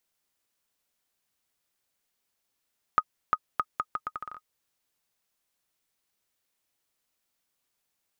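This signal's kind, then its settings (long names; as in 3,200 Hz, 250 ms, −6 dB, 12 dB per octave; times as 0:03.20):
bouncing ball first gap 0.35 s, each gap 0.76, 1,250 Hz, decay 51 ms −9 dBFS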